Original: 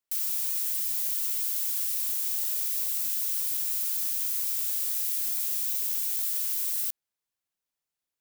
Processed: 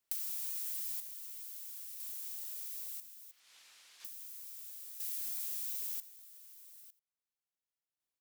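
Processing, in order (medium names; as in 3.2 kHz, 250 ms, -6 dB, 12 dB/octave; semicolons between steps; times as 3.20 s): 3.31–4.05 s: low-pass 3.3 kHz 12 dB/octave; compression 16:1, threshold -39 dBFS, peak gain reduction 14 dB; random-step tremolo 1 Hz, depth 85%; echo from a far wall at 15 m, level -18 dB; trim +3.5 dB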